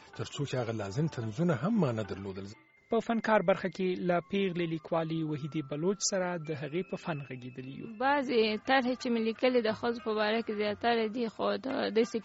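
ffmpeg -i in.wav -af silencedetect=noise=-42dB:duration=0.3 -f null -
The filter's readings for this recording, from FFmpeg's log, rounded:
silence_start: 2.52
silence_end: 2.91 | silence_duration: 0.39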